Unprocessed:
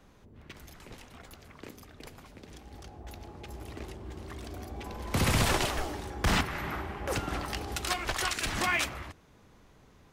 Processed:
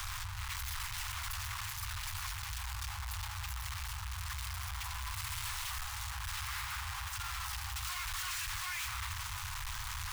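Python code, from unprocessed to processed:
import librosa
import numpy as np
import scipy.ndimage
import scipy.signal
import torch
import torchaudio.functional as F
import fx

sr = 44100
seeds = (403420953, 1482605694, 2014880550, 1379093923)

y = np.sign(x) * np.sqrt(np.mean(np.square(x)))
y = scipy.signal.sosfilt(scipy.signal.ellip(3, 1.0, 50, [100.0, 1000.0], 'bandstop', fs=sr, output='sos'), y)
y = F.gain(torch.from_numpy(y), -3.0).numpy()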